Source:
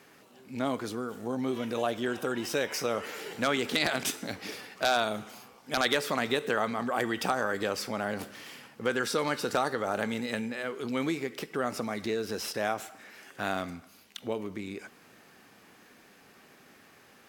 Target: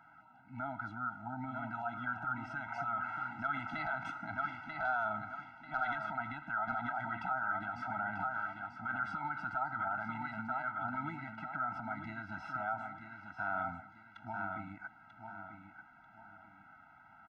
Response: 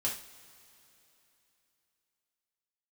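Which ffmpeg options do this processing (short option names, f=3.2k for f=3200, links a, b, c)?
-af "lowpass=f=1.2k:t=q:w=4.9,equalizer=f=130:t=o:w=0.59:g=5.5,aecho=1:1:940|1880|2820|3760:0.376|0.12|0.0385|0.0123,alimiter=limit=-20dB:level=0:latency=1:release=50,equalizer=f=125:t=o:w=1:g=-6,equalizer=f=250:t=o:w=1:g=-9,equalizer=f=500:t=o:w=1:g=-9,afftfilt=real='re*eq(mod(floor(b*sr/1024/320),2),0)':imag='im*eq(mod(floor(b*sr/1024/320),2),0)':win_size=1024:overlap=0.75"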